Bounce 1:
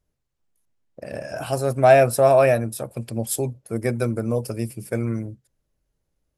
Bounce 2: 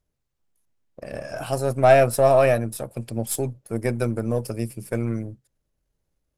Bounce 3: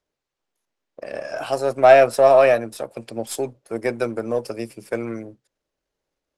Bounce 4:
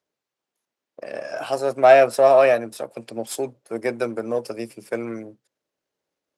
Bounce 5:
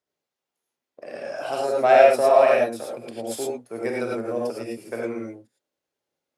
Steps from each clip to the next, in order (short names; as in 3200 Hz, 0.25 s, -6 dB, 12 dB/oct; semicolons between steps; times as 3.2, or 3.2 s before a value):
half-wave gain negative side -3 dB
three-band isolator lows -17 dB, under 280 Hz, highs -14 dB, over 7000 Hz; gain +4 dB
HPF 130 Hz 12 dB/oct; gain -1 dB
non-linear reverb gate 0.13 s rising, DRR -2.5 dB; gain -5.5 dB